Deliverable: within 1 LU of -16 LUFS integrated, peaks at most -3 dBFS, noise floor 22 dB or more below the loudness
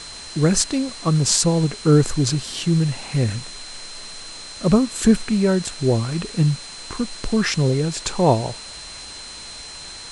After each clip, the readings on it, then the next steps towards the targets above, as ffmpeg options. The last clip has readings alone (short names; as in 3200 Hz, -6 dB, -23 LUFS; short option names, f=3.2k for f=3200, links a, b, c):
steady tone 4100 Hz; tone level -37 dBFS; noise floor -37 dBFS; noise floor target -42 dBFS; loudness -20.0 LUFS; peak -2.0 dBFS; loudness target -16.0 LUFS
-> -af "bandreject=f=4.1k:w=30"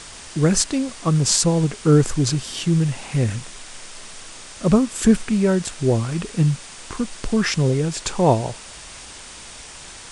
steady tone none; noise floor -39 dBFS; noise floor target -42 dBFS
-> -af "afftdn=nr=6:nf=-39"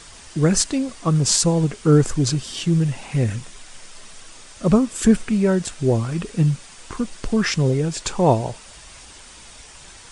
noise floor -43 dBFS; loudness -20.0 LUFS; peak -2.5 dBFS; loudness target -16.0 LUFS
-> -af "volume=4dB,alimiter=limit=-3dB:level=0:latency=1"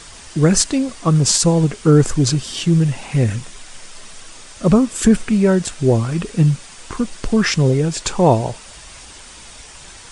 loudness -16.5 LUFS; peak -3.0 dBFS; noise floor -39 dBFS